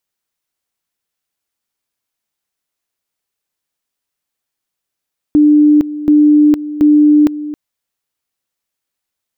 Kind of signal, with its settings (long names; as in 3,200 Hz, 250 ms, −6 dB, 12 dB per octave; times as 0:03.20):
tone at two levels in turn 298 Hz −4.5 dBFS, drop 15 dB, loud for 0.46 s, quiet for 0.27 s, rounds 3